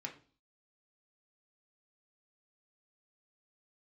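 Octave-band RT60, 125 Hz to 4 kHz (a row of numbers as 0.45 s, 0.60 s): 0.55 s, 0.50 s, 0.45 s, 0.40 s, 0.35 s, 0.45 s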